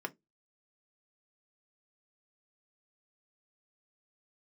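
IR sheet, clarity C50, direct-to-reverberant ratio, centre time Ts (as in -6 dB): 26.5 dB, 4.0 dB, 4 ms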